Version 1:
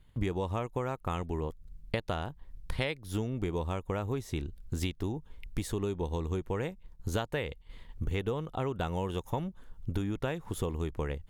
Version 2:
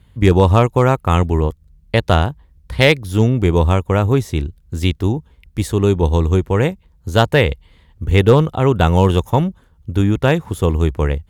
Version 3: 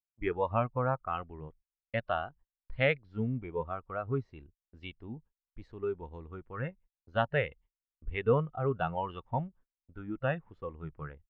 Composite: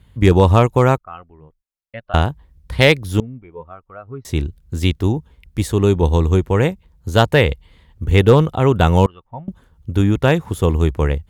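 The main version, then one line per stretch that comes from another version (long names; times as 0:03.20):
2
0:00.98–0:02.14: punch in from 3
0:03.20–0:04.25: punch in from 3
0:09.06–0:09.48: punch in from 3
not used: 1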